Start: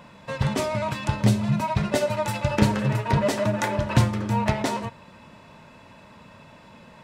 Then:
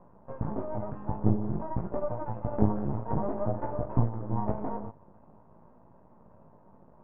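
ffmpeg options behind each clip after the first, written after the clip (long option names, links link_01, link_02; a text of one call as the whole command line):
ffmpeg -i in.wav -af "flanger=delay=16.5:depth=3.2:speed=0.51,aeval=exprs='max(val(0),0)':channel_layout=same,lowpass=frequency=1000:width=0.5412,lowpass=frequency=1000:width=1.3066" out.wav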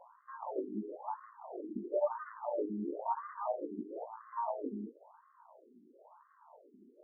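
ffmpeg -i in.wav -af "alimiter=limit=-19dB:level=0:latency=1:release=398,crystalizer=i=5:c=0,afftfilt=real='re*between(b*sr/1024,280*pow(1500/280,0.5+0.5*sin(2*PI*0.99*pts/sr))/1.41,280*pow(1500/280,0.5+0.5*sin(2*PI*0.99*pts/sr))*1.41)':imag='im*between(b*sr/1024,280*pow(1500/280,0.5+0.5*sin(2*PI*0.99*pts/sr))/1.41,280*pow(1500/280,0.5+0.5*sin(2*PI*0.99*pts/sr))*1.41)':win_size=1024:overlap=0.75,volume=3dB" out.wav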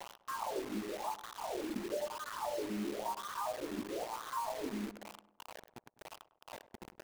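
ffmpeg -i in.wav -filter_complex "[0:a]acompressor=threshold=-45dB:ratio=8,acrusher=bits=8:mix=0:aa=0.000001,asplit=2[link_01][link_02];[link_02]adelay=101,lowpass=frequency=1300:poles=1,volume=-15dB,asplit=2[link_03][link_04];[link_04]adelay=101,lowpass=frequency=1300:poles=1,volume=0.52,asplit=2[link_05][link_06];[link_06]adelay=101,lowpass=frequency=1300:poles=1,volume=0.52,asplit=2[link_07][link_08];[link_08]adelay=101,lowpass=frequency=1300:poles=1,volume=0.52,asplit=2[link_09][link_10];[link_10]adelay=101,lowpass=frequency=1300:poles=1,volume=0.52[link_11];[link_01][link_03][link_05][link_07][link_09][link_11]amix=inputs=6:normalize=0,volume=9dB" out.wav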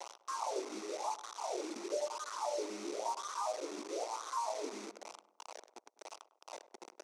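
ffmpeg -i in.wav -af "highpass=frequency=350:width=0.5412,highpass=frequency=350:width=1.3066,equalizer=frequency=1700:width_type=q:width=4:gain=-9,equalizer=frequency=3000:width_type=q:width=4:gain=-6,equalizer=frequency=5900:width_type=q:width=4:gain=8,lowpass=frequency=9200:width=0.5412,lowpass=frequency=9200:width=1.3066,volume=1.5dB" out.wav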